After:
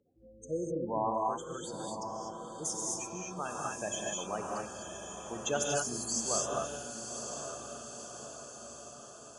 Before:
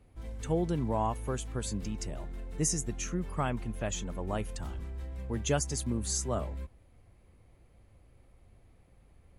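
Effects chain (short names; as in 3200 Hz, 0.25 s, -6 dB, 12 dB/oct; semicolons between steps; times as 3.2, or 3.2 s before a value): spectral gate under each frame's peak -20 dB strong; weighting filter A; 0.42–0.73 spectral repair 630–5200 Hz; 1.11–3.72 resonator 92 Hz, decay 0.41 s, harmonics all, mix 50%; diffused feedback echo 0.965 s, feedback 59%, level -8 dB; non-linear reverb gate 0.27 s rising, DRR -2 dB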